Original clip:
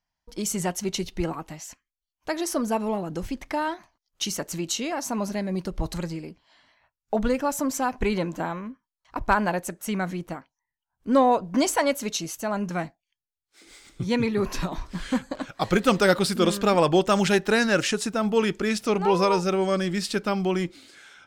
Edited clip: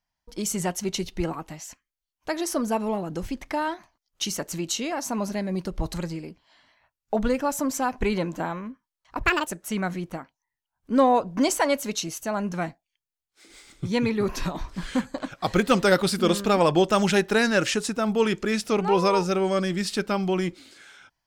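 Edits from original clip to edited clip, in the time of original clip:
9.23–9.64 speed 171%

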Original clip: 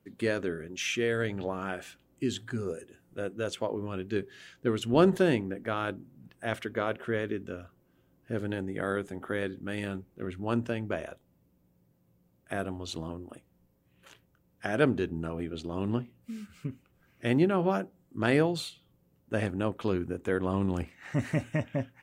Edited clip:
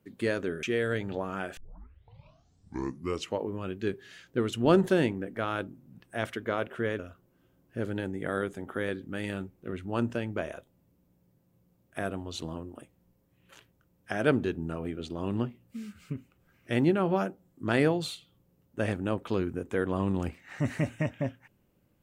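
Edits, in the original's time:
0.63–0.92 cut
1.86 tape start 1.91 s
7.28–7.53 cut

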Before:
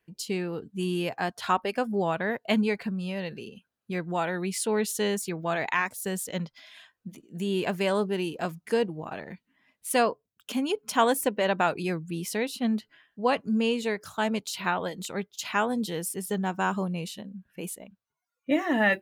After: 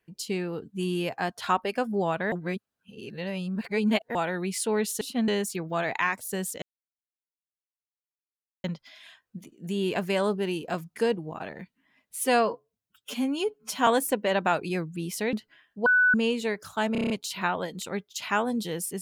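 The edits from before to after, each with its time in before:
2.32–4.15 reverse
6.35 insert silence 2.02 s
9.87–11.01 stretch 1.5×
12.47–12.74 move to 5.01
13.27–13.55 bleep 1490 Hz -17 dBFS
14.33 stutter 0.03 s, 7 plays

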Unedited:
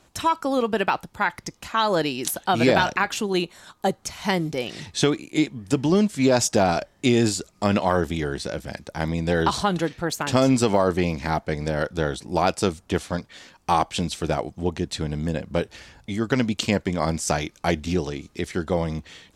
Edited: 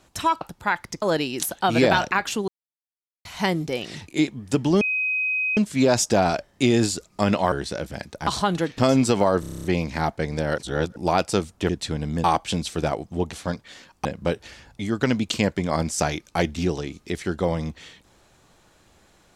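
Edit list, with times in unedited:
0.41–0.95 cut
1.56–1.87 cut
3.33–4.1 mute
4.93–5.27 cut
6 add tone 2520 Hz -21 dBFS 0.76 s
7.95–8.26 cut
9.01–9.48 cut
9.99–10.31 cut
10.93 stutter 0.03 s, 9 plays
11.87–12.25 reverse
12.98–13.7 swap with 14.79–15.34

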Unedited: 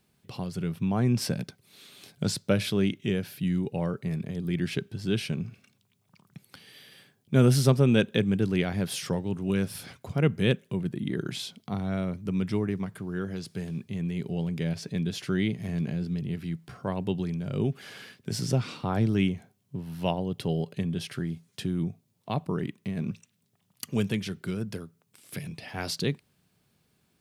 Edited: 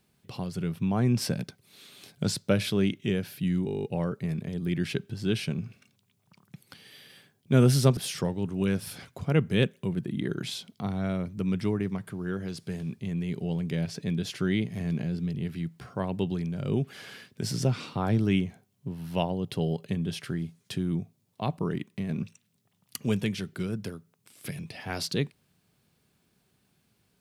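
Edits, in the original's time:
3.66 stutter 0.02 s, 10 plays
7.79–8.85 cut

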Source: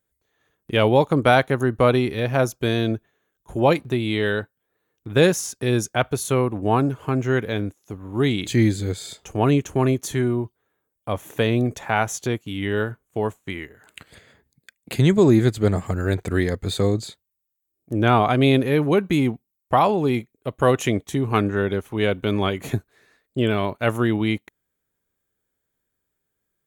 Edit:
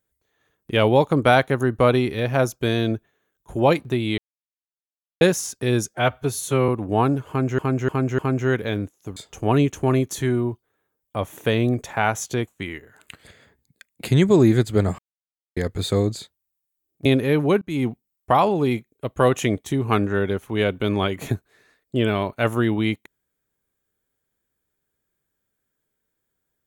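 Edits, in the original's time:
4.18–5.21 mute
5.89–6.42 stretch 1.5×
7.02–7.32 loop, 4 plays
8–9.09 cut
12.4–13.35 cut
15.86–16.44 mute
17.93–18.48 cut
19.04–19.3 fade in

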